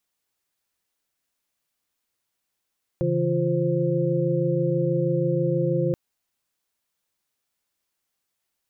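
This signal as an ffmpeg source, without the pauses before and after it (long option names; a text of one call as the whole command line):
ffmpeg -f lavfi -i "aevalsrc='0.0531*(sin(2*PI*138.59*t)+sin(2*PI*164.81*t)+sin(2*PI*349.23*t)+sin(2*PI*523.25*t))':duration=2.93:sample_rate=44100" out.wav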